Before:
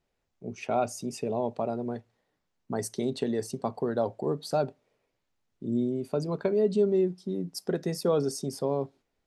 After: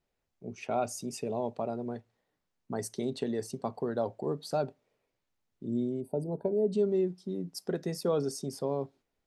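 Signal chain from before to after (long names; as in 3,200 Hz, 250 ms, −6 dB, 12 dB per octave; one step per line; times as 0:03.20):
0:00.84–0:01.51: high-shelf EQ 4,800 Hz +5 dB
0:06.01–0:06.73: gain on a spectral selection 970–8,000 Hz −19 dB
level −3.5 dB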